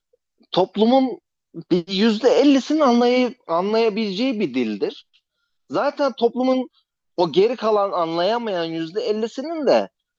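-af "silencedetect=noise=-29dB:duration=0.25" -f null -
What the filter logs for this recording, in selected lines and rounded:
silence_start: 0.00
silence_end: 0.53 | silence_duration: 0.53
silence_start: 1.14
silence_end: 1.56 | silence_duration: 0.42
silence_start: 4.93
silence_end: 5.71 | silence_duration: 0.79
silence_start: 6.64
silence_end: 7.18 | silence_duration: 0.55
silence_start: 9.86
silence_end: 10.18 | silence_duration: 0.32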